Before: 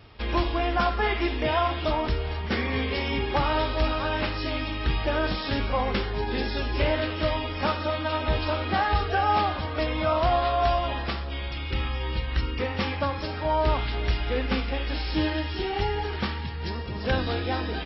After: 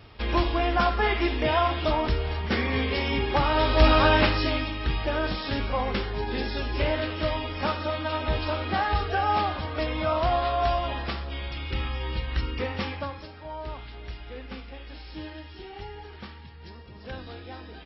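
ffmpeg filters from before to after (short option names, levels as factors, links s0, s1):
-af "volume=2.82,afade=t=in:st=3.55:d=0.44:silence=0.398107,afade=t=out:st=3.99:d=0.74:silence=0.298538,afade=t=out:st=12.68:d=0.64:silence=0.266073"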